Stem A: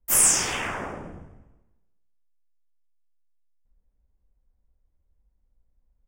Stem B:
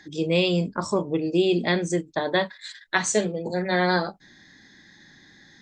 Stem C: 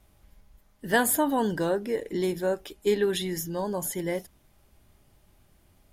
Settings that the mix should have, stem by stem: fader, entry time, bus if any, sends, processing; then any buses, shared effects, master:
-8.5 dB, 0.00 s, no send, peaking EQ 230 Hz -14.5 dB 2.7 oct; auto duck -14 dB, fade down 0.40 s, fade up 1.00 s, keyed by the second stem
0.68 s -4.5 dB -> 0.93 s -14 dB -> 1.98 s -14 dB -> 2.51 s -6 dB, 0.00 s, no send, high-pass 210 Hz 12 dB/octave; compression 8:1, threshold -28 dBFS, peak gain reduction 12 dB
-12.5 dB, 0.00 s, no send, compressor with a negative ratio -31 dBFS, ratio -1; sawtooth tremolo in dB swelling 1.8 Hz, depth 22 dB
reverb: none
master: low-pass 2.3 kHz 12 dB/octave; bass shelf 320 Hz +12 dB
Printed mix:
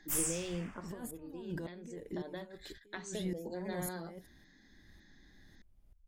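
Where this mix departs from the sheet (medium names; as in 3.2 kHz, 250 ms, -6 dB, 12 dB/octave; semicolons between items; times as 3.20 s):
stem B -4.5 dB -> -12.5 dB; master: missing low-pass 2.3 kHz 12 dB/octave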